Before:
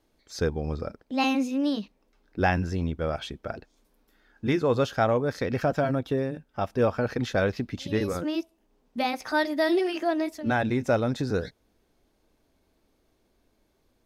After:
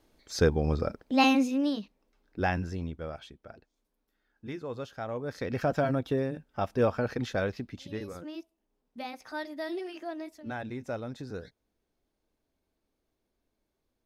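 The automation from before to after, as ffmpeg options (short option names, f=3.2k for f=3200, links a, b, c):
-af "volume=15dB,afade=t=out:st=1.17:d=0.64:silence=0.398107,afade=t=out:st=2.57:d=0.79:silence=0.354813,afade=t=in:st=5.05:d=0.71:silence=0.251189,afade=t=out:st=6.83:d=1.23:silence=0.316228"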